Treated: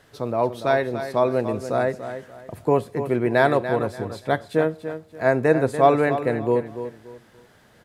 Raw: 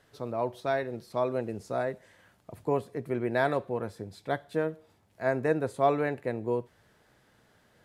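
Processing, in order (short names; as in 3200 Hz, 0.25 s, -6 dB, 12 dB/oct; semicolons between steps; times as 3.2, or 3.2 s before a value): feedback echo 0.289 s, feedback 28%, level -10.5 dB; gain +8.5 dB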